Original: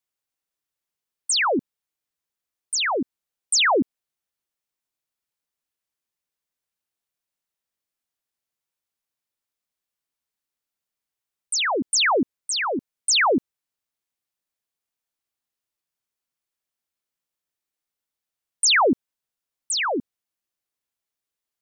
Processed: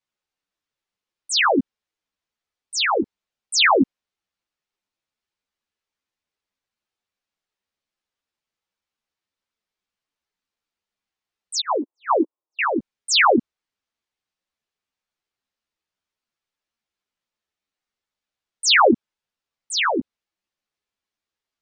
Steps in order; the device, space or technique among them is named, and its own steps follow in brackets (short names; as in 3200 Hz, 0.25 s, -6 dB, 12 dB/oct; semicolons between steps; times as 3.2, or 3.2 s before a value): 11.6–12.59 Chebyshev band-pass 300–1100 Hz, order 3; string-machine ensemble chorus (ensemble effect; LPF 5100 Hz 12 dB/oct); gain +6.5 dB